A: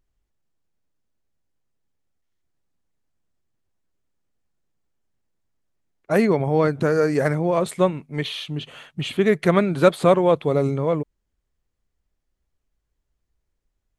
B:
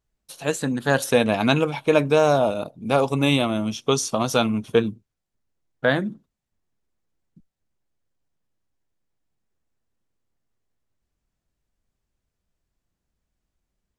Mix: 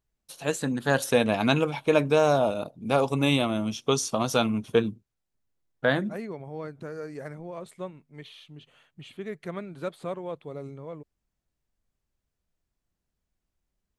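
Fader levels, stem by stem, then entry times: -18.0 dB, -3.5 dB; 0.00 s, 0.00 s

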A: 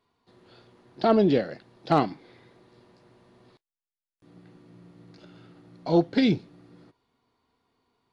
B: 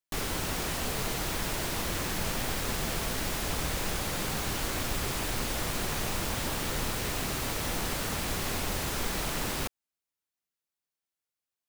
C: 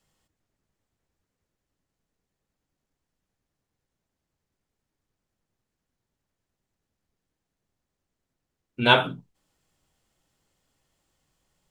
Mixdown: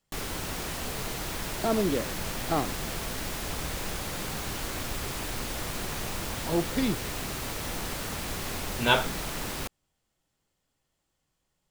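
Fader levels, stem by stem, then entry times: -6.5 dB, -2.0 dB, -5.0 dB; 0.60 s, 0.00 s, 0.00 s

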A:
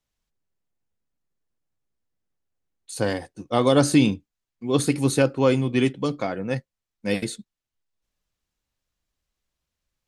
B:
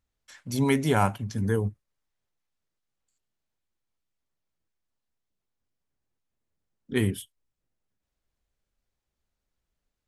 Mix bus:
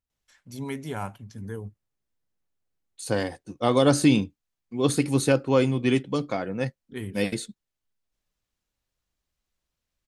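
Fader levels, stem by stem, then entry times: -1.5 dB, -10.0 dB; 0.10 s, 0.00 s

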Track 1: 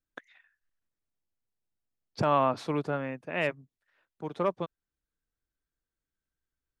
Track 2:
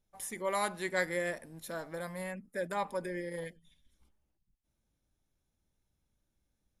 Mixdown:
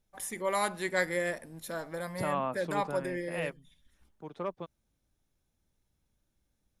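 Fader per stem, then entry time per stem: -7.5 dB, +2.5 dB; 0.00 s, 0.00 s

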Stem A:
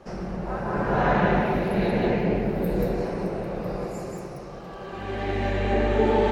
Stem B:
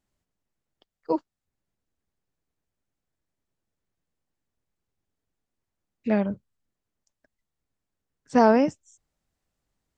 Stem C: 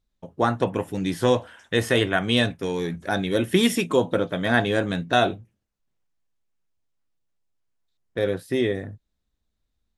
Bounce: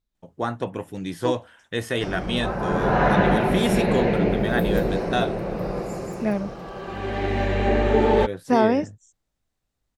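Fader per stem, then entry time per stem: +2.5 dB, -1.0 dB, -5.0 dB; 1.95 s, 0.15 s, 0.00 s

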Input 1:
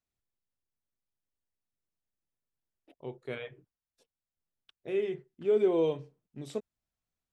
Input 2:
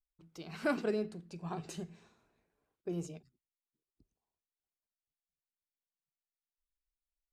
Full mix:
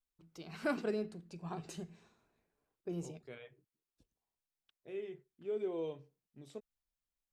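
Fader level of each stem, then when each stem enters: -12.0 dB, -2.5 dB; 0.00 s, 0.00 s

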